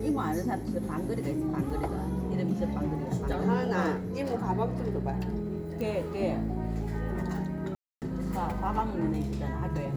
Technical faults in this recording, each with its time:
1.70 s: dropout 4.3 ms
5.81 s: pop -23 dBFS
7.75–8.02 s: dropout 268 ms

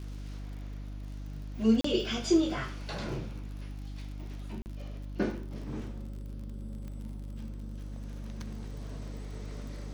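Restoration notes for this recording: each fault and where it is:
crackle 49 per s -43 dBFS
hum 50 Hz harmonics 6 -40 dBFS
1.81–1.84 s: dropout 34 ms
4.62–4.66 s: dropout 39 ms
6.88 s: pop -32 dBFS

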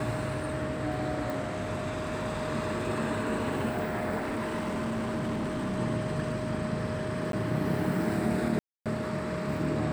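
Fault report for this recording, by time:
whine 620 Hz -36 dBFS
1.30 s: pop
4.19–5.79 s: clipped -28 dBFS
7.32–7.33 s: dropout 12 ms
8.59–8.86 s: dropout 267 ms

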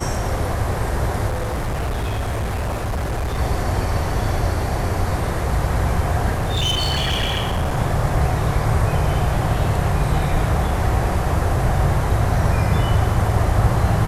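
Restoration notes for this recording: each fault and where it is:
1.28–3.39 s: clipped -19.5 dBFS
6.33–7.78 s: clipped -16.5 dBFS

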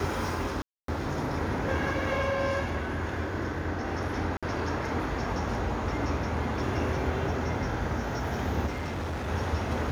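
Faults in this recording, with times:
0.62–0.88 s: dropout 263 ms
4.37–4.43 s: dropout 56 ms
8.66–9.29 s: clipped -30 dBFS

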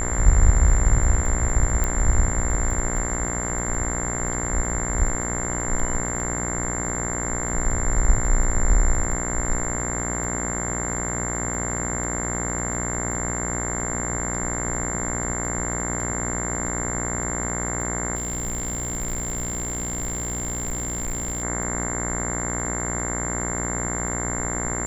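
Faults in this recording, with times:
buzz 60 Hz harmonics 36 -29 dBFS
crackle 15 per s -32 dBFS
whine 7.3 kHz -28 dBFS
1.84 s: pop -11 dBFS
18.15–21.44 s: clipped -23.5 dBFS

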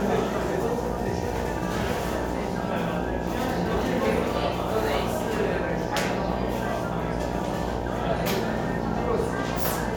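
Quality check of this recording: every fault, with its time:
buzz 60 Hz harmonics 16 -31 dBFS

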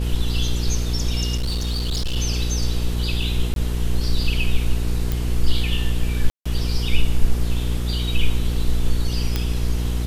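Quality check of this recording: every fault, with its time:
hum 60 Hz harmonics 8 -23 dBFS
1.36–2.17 s: clipped -19.5 dBFS
3.54–3.56 s: dropout 22 ms
5.12 s: pop
6.30–6.46 s: dropout 155 ms
9.36 s: pop -7 dBFS

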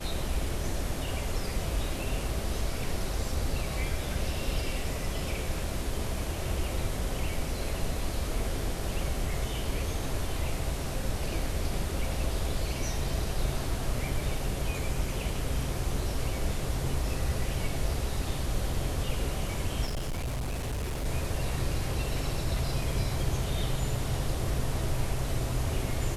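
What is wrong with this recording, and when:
19.85–21.06 s: clipped -29 dBFS

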